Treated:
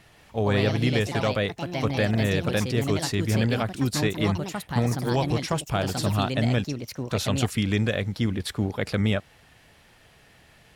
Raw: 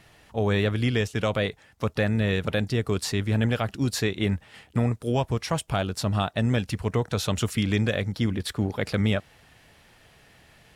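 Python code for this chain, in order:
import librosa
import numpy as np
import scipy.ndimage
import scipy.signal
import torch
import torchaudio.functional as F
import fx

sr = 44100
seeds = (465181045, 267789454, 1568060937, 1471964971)

y = fx.ladder_bandpass(x, sr, hz=5900.0, resonance_pct=85, at=(6.64, 7.1))
y = fx.echo_pitch(y, sr, ms=170, semitones=4, count=2, db_per_echo=-6.0)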